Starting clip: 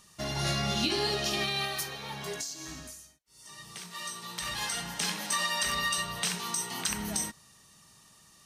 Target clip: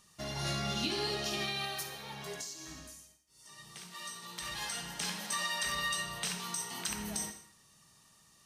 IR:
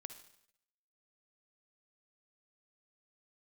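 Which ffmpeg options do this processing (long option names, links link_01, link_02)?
-filter_complex "[1:a]atrim=start_sample=2205,afade=type=out:start_time=0.29:duration=0.01,atrim=end_sample=13230[link_01];[0:a][link_01]afir=irnorm=-1:irlink=0"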